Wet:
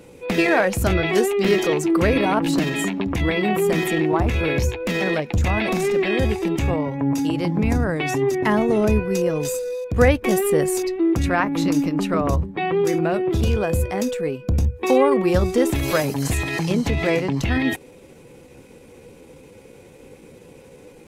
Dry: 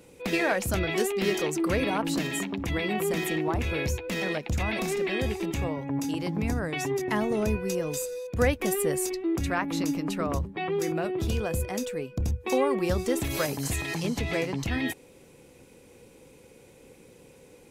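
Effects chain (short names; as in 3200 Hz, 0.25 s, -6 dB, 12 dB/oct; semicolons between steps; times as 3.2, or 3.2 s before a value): high shelf 3300 Hz -6 dB; tempo 0.84×; gain +8.5 dB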